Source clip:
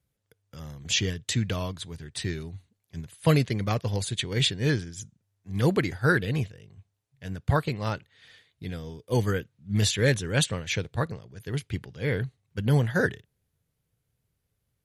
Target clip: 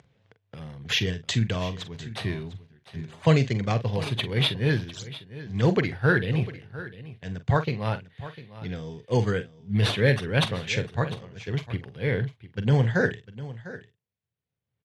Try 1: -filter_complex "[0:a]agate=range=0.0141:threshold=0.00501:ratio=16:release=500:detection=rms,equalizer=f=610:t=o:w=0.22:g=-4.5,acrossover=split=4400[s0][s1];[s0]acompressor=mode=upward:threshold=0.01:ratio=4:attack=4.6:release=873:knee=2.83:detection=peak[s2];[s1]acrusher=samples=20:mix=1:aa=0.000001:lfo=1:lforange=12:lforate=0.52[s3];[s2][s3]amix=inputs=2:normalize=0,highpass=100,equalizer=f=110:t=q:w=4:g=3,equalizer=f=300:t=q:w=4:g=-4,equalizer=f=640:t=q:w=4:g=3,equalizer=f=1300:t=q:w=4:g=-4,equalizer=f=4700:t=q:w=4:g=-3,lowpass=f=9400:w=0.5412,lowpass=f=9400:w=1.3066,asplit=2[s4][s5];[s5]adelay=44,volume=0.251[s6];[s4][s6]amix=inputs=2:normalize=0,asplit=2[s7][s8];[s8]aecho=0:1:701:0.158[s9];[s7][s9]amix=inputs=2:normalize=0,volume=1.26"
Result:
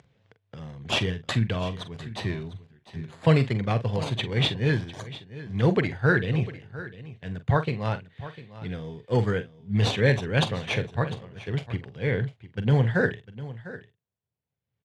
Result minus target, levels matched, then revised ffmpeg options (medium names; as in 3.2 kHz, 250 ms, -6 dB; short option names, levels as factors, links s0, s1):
decimation with a swept rate: distortion +9 dB
-filter_complex "[0:a]agate=range=0.0141:threshold=0.00501:ratio=16:release=500:detection=rms,equalizer=f=610:t=o:w=0.22:g=-4.5,acrossover=split=4400[s0][s1];[s0]acompressor=mode=upward:threshold=0.01:ratio=4:attack=4.6:release=873:knee=2.83:detection=peak[s2];[s1]acrusher=samples=5:mix=1:aa=0.000001:lfo=1:lforange=3:lforate=0.52[s3];[s2][s3]amix=inputs=2:normalize=0,highpass=100,equalizer=f=110:t=q:w=4:g=3,equalizer=f=300:t=q:w=4:g=-4,equalizer=f=640:t=q:w=4:g=3,equalizer=f=1300:t=q:w=4:g=-4,equalizer=f=4700:t=q:w=4:g=-3,lowpass=f=9400:w=0.5412,lowpass=f=9400:w=1.3066,asplit=2[s4][s5];[s5]adelay=44,volume=0.251[s6];[s4][s6]amix=inputs=2:normalize=0,asplit=2[s7][s8];[s8]aecho=0:1:701:0.158[s9];[s7][s9]amix=inputs=2:normalize=0,volume=1.26"